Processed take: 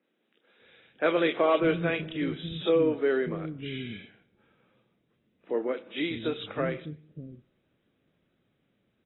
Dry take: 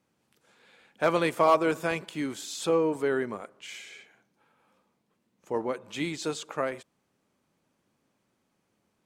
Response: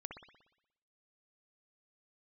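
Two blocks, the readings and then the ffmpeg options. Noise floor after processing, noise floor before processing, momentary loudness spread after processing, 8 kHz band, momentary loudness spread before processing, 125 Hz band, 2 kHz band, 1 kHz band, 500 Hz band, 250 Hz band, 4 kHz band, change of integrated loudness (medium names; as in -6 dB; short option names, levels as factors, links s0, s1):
-75 dBFS, -76 dBFS, 18 LU, under -35 dB, 19 LU, +4.0 dB, +0.5 dB, -5.0 dB, +1.0 dB, +2.0 dB, +1.5 dB, 0.0 dB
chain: -filter_complex "[0:a]equalizer=f=950:t=o:w=0.95:g=-14.5,acrossover=split=240|2600[s0][s1][s2];[s2]adelay=30[s3];[s0]adelay=600[s4];[s4][s1][s3]amix=inputs=3:normalize=0,asplit=2[s5][s6];[1:a]atrim=start_sample=2205,afade=t=out:st=0.33:d=0.01,atrim=end_sample=14994[s7];[s6][s7]afir=irnorm=-1:irlink=0,volume=0.266[s8];[s5][s8]amix=inputs=2:normalize=0,volume=1.58" -ar 22050 -c:a aac -b:a 16k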